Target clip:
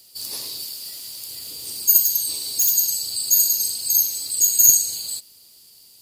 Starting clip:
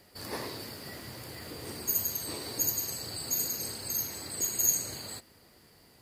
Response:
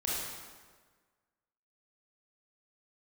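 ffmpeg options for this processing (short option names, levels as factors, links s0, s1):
-filter_complex "[0:a]asettb=1/sr,asplit=3[s0][s1][s2];[s0]atrim=end=0.644[s3];[s1]atrim=start=0.64:end=1.31,asetpts=PTS-STARTPTS,afade=t=in:d=0.004:c=qsin,afade=t=out:st=0.666:d=0.004:c=qsin,lowshelf=f=370:g=-7.5[s4];[s2]atrim=start=1.306[s5];[s3][s4]acrossfade=d=0.004:c1=hsin:c2=qsin[s6];[s6][s5]acrossfade=d=0.004:c1=qsin:c2=hsin,asettb=1/sr,asplit=3[s7][s8][s9];[s7]atrim=end=2.034[s10];[s8]atrim=start=2.03:end=2.77,asetpts=PTS-STARTPTS,afade=t=in:d=0.004:c=qsin,afade=t=out:st=0.736:d=0.004:c=qsin,aeval=exprs='0.0501*(abs(mod(val(0)/0.0501+3,4)-2)-1)':c=same[s11];[s9]atrim=start=2.766[s12];[s10][s11]acrossfade=d=0.004:c1=hsin:c2=qsin[s13];[s13][s12]acrossfade=d=0.004:c1=qsin:c2=hsin,aexciter=amount=9.9:drive=5.3:freq=2800,volume=0.631,asoftclip=hard,volume=1.58,volume=0.376"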